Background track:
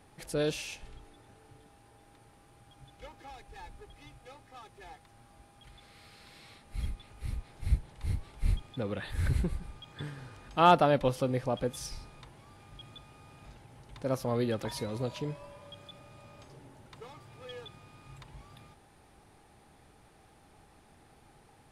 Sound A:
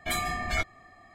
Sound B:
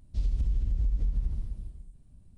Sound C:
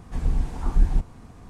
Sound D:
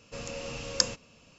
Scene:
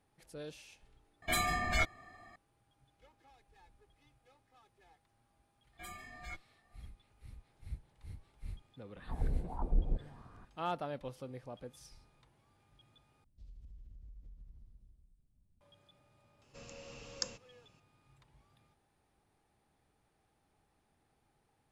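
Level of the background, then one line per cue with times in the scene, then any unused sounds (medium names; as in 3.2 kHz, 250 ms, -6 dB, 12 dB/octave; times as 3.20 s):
background track -16 dB
1.22 s: add A -2.5 dB
5.73 s: add A -16 dB + endless flanger 3.9 ms +2.1 Hz
8.96 s: add C -12 dB + touch-sensitive low-pass 530–1700 Hz down, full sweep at -18.5 dBFS
13.24 s: replace with B -18 dB + compression 1.5:1, threshold -46 dBFS
16.42 s: add D -13 dB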